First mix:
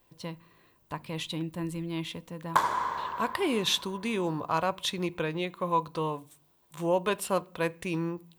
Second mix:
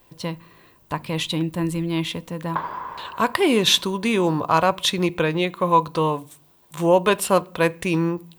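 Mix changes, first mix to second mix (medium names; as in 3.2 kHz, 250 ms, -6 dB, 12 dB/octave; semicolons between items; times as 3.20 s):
speech +10.0 dB; background: add distance through air 420 m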